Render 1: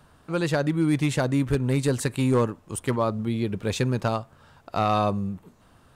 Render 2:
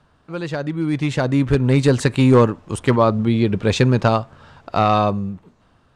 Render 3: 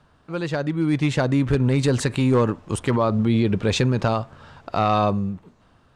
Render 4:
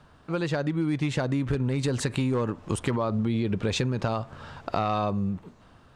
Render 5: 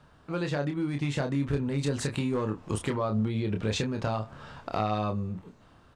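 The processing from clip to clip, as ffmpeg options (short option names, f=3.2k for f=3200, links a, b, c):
-af "lowpass=5.7k,dynaudnorm=f=290:g=9:m=12.5dB,volume=-2dB"
-af "alimiter=limit=-11.5dB:level=0:latency=1:release=45"
-af "acompressor=threshold=-26dB:ratio=6,volume=2.5dB"
-filter_complex "[0:a]asplit=2[a][b];[b]adelay=28,volume=-5.5dB[c];[a][c]amix=inputs=2:normalize=0,asoftclip=type=hard:threshold=-15dB,volume=-3.5dB"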